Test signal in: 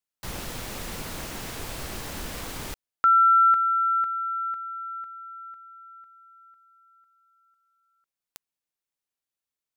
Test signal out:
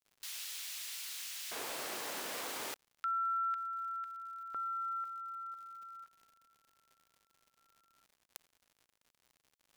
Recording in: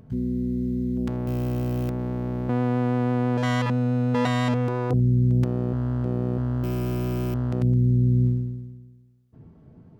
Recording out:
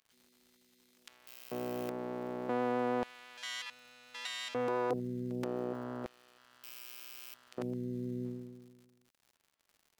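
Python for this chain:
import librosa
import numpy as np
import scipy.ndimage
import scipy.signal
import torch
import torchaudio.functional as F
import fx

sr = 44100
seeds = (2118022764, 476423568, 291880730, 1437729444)

y = fx.filter_lfo_highpass(x, sr, shape='square', hz=0.33, low_hz=430.0, high_hz=3000.0, q=0.88)
y = fx.dmg_crackle(y, sr, seeds[0], per_s=140.0, level_db=-50.0)
y = F.gain(torch.from_numpy(y), -3.5).numpy()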